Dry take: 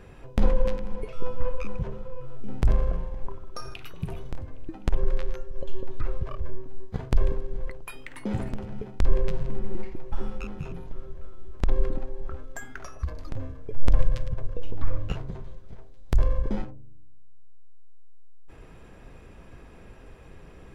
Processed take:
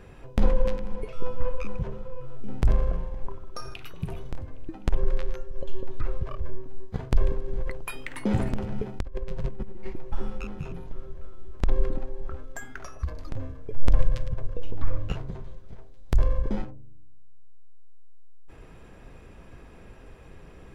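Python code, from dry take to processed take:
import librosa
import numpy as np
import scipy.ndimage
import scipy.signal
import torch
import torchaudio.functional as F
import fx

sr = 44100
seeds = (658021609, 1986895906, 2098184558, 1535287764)

y = fx.over_compress(x, sr, threshold_db=-25.0, ratio=-1.0, at=(7.46, 9.91), fade=0.02)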